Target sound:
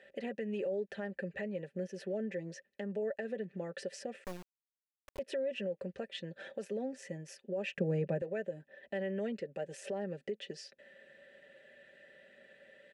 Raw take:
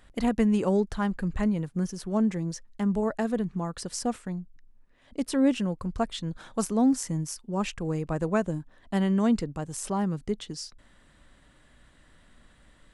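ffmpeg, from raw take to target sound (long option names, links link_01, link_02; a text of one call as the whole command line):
ffmpeg -i in.wav -filter_complex "[0:a]highpass=frequency=66:width=0.5412,highpass=frequency=66:width=1.3066,acompressor=threshold=-34dB:ratio=2.5,asplit=3[link_01][link_02][link_03];[link_01]bandpass=frequency=530:width_type=q:width=8,volume=0dB[link_04];[link_02]bandpass=frequency=1840:width_type=q:width=8,volume=-6dB[link_05];[link_03]bandpass=frequency=2480:width_type=q:width=8,volume=-9dB[link_06];[link_04][link_05][link_06]amix=inputs=3:normalize=0,aecho=1:1:5.1:0.63,alimiter=level_in=17.5dB:limit=-24dB:level=0:latency=1:release=96,volume=-17.5dB,asettb=1/sr,asplit=3[link_07][link_08][link_09];[link_07]atrim=end=4.244[link_10];[link_08]atrim=start=4.24:end=5.19,asetpts=PTS-STARTPTS,afade=type=in:duration=0.004:curve=qsin,afade=type=out:start_time=0.946:duration=0.004:curve=qsin,acrusher=bits=7:dc=4:mix=0:aa=0.000001[link_11];[link_09]atrim=start=5.186[link_12];[link_10][link_11]acrossfade=duration=0.004:curve1=hsin:curve2=qsin[link_13];[link_13][link_12]acrossfade=duration=0.004:curve1=qsin:curve2=hsin,asettb=1/sr,asplit=3[link_14][link_15][link_16];[link_14]atrim=end=7.774[link_17];[link_15]atrim=start=7.77:end=8.22,asetpts=PTS-STARTPTS,afade=type=in:duration=0.004:curve=qsin,afade=type=out:start_time=0.446:duration=0.004:curve=qsin,equalizer=frequency=170:width=0.81:gain=14[link_18];[link_16]atrim=start=8.216[link_19];[link_17][link_18]acrossfade=duration=0.004:curve1=hsin:curve2=qsin[link_20];[link_20][link_19]acrossfade=duration=0.004:curve1=qsin:curve2=hsin,volume=12.5dB" out.wav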